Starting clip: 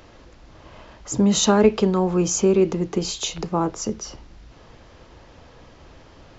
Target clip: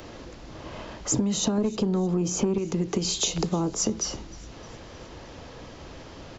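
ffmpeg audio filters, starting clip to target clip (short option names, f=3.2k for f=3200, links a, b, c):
-filter_complex "[0:a]acrossover=split=280|950|3800[a][b][c][d];[a]acompressor=threshold=-23dB:ratio=4[e];[b]acompressor=threshold=-30dB:ratio=4[f];[c]acompressor=threshold=-40dB:ratio=4[g];[d]acompressor=threshold=-32dB:ratio=4[h];[e][f][g][h]amix=inputs=4:normalize=0,asetnsamples=n=441:p=0,asendcmd='1.58 equalizer g 14;2.58 equalizer g 6',equalizer=f=270:w=0.34:g=8,asoftclip=type=tanh:threshold=-4dB,acompressor=threshold=-22dB:ratio=12,highshelf=f=2.3k:g=8,aecho=1:1:309|618|927|1236:0.0794|0.0437|0.024|0.0132"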